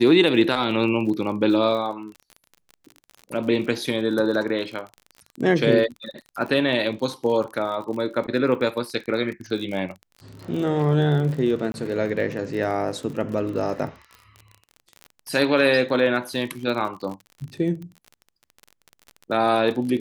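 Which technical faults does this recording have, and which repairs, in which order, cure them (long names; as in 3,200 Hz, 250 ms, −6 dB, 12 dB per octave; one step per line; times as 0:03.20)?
surface crackle 40 per second −31 dBFS
0:11.72–0:11.74: drop-out 21 ms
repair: click removal
repair the gap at 0:11.72, 21 ms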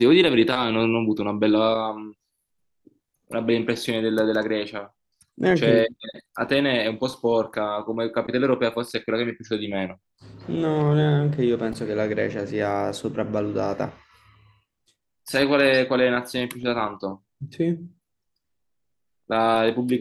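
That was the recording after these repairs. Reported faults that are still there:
none of them is left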